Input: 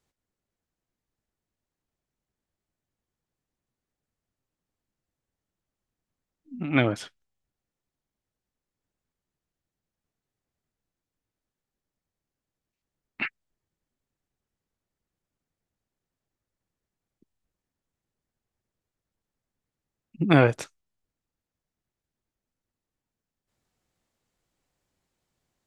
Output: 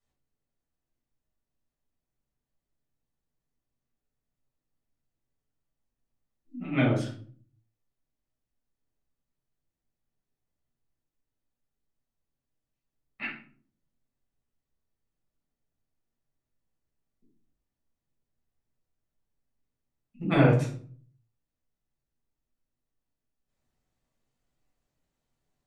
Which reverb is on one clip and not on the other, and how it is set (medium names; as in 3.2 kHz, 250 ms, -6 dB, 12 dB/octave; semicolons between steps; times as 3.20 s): simulated room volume 420 m³, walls furnished, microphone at 6.4 m; trim -13.5 dB